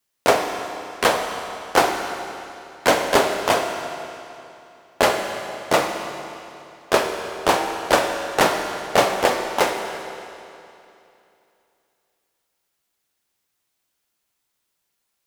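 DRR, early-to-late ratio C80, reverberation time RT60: 3.5 dB, 5.5 dB, 2.8 s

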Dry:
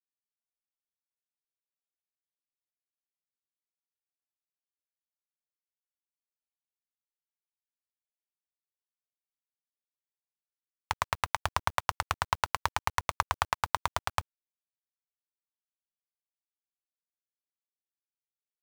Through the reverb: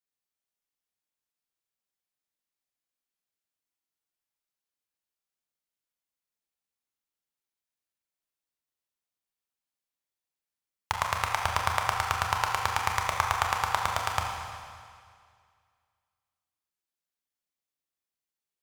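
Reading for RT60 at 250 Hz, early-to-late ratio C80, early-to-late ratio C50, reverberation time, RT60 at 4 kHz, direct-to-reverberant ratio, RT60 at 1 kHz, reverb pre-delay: 2.0 s, 4.0 dB, 2.5 dB, 2.1 s, 2.0 s, 0.5 dB, 2.1 s, 27 ms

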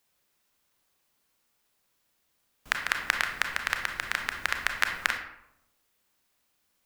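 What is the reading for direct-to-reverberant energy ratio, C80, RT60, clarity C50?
4.0 dB, 9.0 dB, 0.80 s, 6.0 dB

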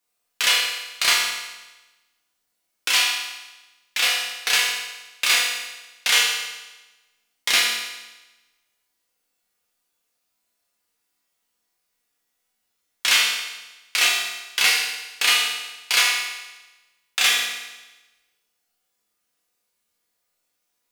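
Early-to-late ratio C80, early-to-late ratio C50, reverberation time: 4.0 dB, 1.5 dB, 1.1 s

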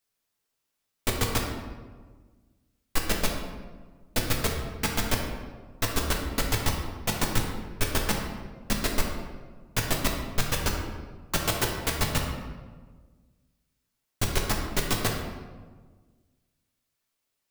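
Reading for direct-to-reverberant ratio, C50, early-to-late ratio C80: 0.0 dB, 3.5 dB, 5.5 dB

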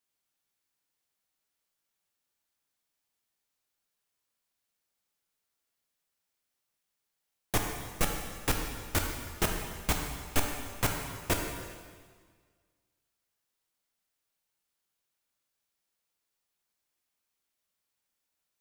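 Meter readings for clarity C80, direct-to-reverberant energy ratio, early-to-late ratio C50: 5.0 dB, 1.5 dB, 3.5 dB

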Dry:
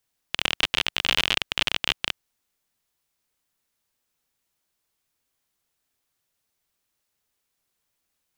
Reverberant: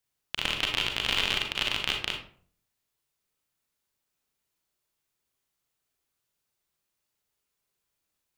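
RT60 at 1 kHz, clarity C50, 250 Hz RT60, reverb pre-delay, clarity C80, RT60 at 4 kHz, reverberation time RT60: 0.45 s, 5.5 dB, 0.65 s, 32 ms, 10.0 dB, 0.30 s, 0.50 s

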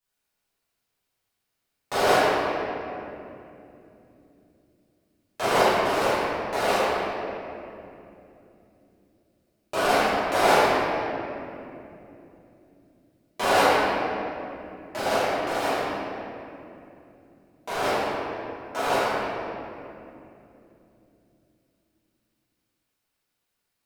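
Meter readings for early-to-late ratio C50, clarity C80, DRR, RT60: -5.0 dB, -3.0 dB, -15.0 dB, 2.9 s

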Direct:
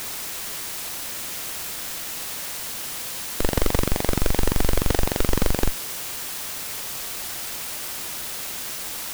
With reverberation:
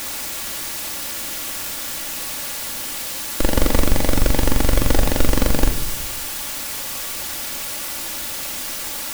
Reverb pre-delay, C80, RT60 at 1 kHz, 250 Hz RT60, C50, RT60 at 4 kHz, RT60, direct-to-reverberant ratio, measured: 3 ms, 14.5 dB, 0.60 s, 1.2 s, 11.0 dB, 0.50 s, 0.70 s, 3.5 dB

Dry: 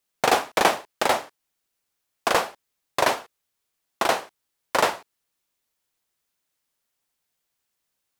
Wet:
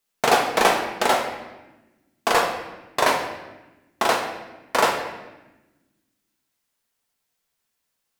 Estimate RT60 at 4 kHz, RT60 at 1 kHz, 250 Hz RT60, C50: 0.85 s, 1.0 s, 1.8 s, 6.0 dB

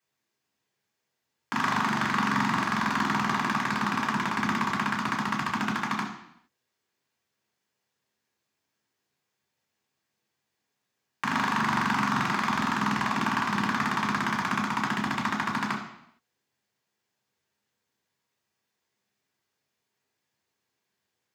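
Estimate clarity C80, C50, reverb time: 9.0 dB, 6.0 dB, 0.75 s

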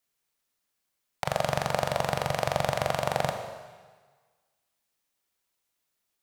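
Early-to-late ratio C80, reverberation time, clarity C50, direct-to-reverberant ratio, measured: 8.0 dB, 1.4 s, 6.5 dB, 5.0 dB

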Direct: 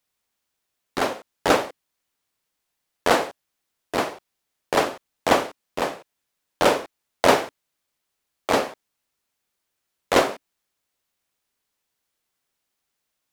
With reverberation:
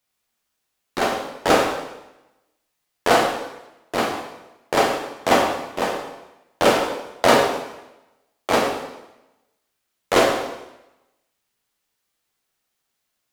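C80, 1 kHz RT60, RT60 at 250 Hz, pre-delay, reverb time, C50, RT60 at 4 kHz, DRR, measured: 7.0 dB, 0.95 s, 0.95 s, 5 ms, 0.95 s, 4.5 dB, 0.90 s, 0.0 dB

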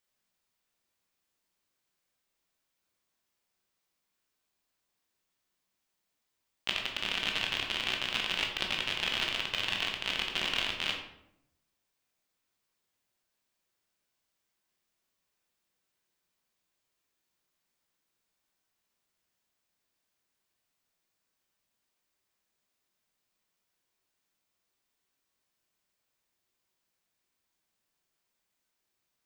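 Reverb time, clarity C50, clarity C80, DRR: 0.80 s, 5.0 dB, 8.5 dB, 0.5 dB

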